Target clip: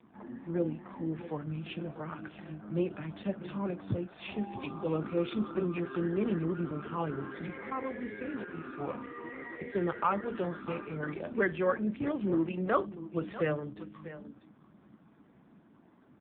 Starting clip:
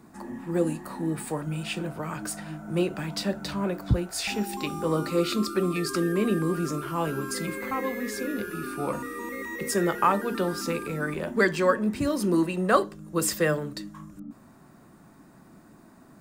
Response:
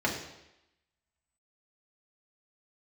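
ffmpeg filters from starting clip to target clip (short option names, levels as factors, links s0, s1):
-af "aecho=1:1:643:0.188,volume=0.531" -ar 8000 -c:a libopencore_amrnb -b:a 5150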